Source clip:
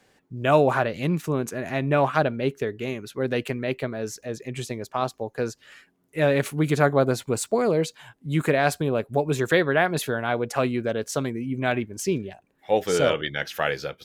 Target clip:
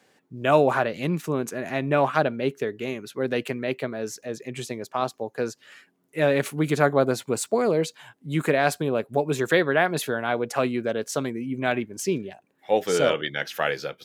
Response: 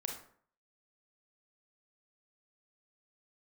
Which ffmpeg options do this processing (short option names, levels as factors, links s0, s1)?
-af "highpass=150"